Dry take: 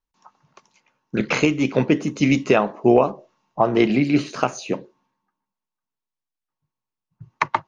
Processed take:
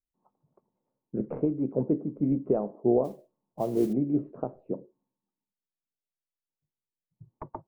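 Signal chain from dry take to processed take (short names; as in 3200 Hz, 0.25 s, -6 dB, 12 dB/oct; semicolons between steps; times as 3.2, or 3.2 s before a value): tracing distortion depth 0.028 ms; ladder low-pass 740 Hz, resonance 20%; 3.04–3.93 modulation noise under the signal 27 dB; gain -4 dB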